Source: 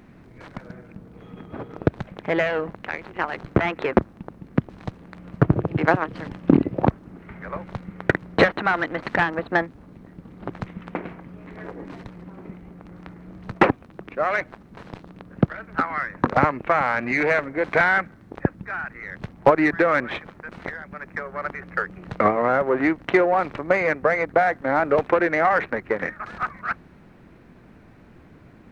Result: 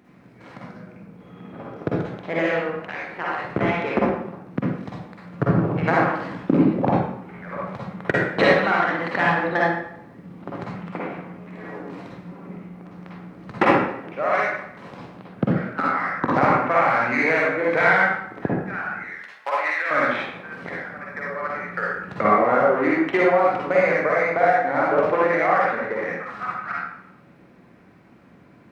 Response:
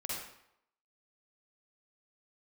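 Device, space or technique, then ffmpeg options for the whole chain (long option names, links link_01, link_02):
far laptop microphone: -filter_complex "[0:a]asettb=1/sr,asplit=3[link_01][link_02][link_03];[link_01]atrim=end=19.054[link_04];[link_02]atrim=start=19.05:end=19.91,asetpts=PTS-STARTPTS,afade=type=in:duration=0.004:curve=qsin,afade=type=out:start_time=0.856:duration=0.004:curve=qsin,highpass=1300[link_05];[link_03]atrim=start=19.906[link_06];[link_04][link_05]acrossfade=duration=0.004:curve1=hsin:curve2=qsin[link_07];[link_07][link_06]acrossfade=duration=0.004:curve1=qsin:curve2=hsin[link_08];[1:a]atrim=start_sample=2205[link_09];[link_08][link_09]afir=irnorm=-1:irlink=0,highpass=120,dynaudnorm=framelen=550:gausssize=21:maxgain=5.5dB,volume=-1.5dB"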